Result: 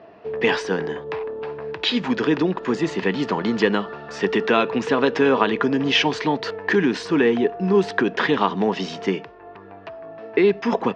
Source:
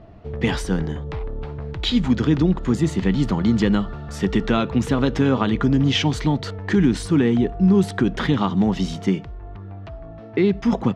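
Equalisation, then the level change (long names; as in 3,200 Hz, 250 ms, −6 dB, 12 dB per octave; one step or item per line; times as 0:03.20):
loudspeaker in its box 280–6,200 Hz, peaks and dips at 440 Hz +8 dB, 670 Hz +3 dB, 990 Hz +7 dB, 1,700 Hz +8 dB, 5,000 Hz +3 dB
parametric band 2,600 Hz +7.5 dB 0.3 octaves
0.0 dB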